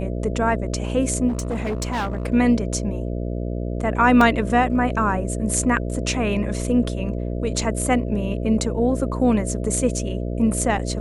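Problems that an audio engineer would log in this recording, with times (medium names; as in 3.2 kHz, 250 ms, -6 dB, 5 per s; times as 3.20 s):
buzz 60 Hz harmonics 11 -26 dBFS
1.28–2.27 s: clipped -20.5 dBFS
4.21 s: dropout 2.9 ms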